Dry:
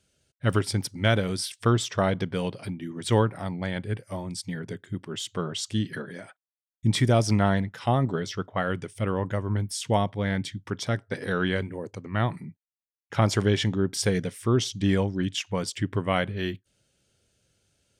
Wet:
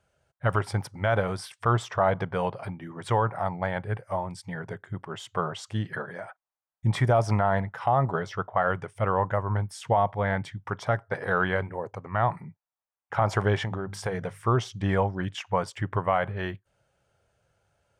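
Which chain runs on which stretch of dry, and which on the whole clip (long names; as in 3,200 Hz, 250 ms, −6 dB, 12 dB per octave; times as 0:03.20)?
0:13.63–0:14.47: mains-hum notches 50/100/150/200 Hz + downward compressor 5 to 1, threshold −25 dBFS
whole clip: drawn EQ curve 140 Hz 0 dB, 270 Hz −9 dB, 790 Hz +11 dB, 1,200 Hz +8 dB, 3,800 Hz −10 dB; brickwall limiter −12.5 dBFS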